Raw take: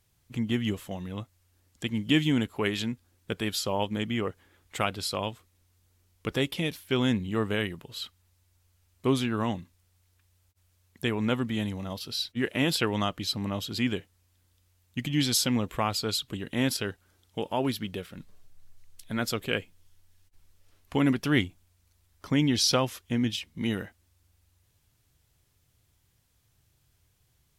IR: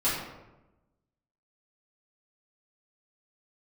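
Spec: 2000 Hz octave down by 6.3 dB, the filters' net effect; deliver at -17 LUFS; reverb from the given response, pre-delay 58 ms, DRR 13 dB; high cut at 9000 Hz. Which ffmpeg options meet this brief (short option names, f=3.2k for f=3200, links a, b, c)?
-filter_complex "[0:a]lowpass=9k,equalizer=f=2k:t=o:g=-8,asplit=2[a][b];[1:a]atrim=start_sample=2205,adelay=58[c];[b][c]afir=irnorm=-1:irlink=0,volume=-24dB[d];[a][d]amix=inputs=2:normalize=0,volume=13dB"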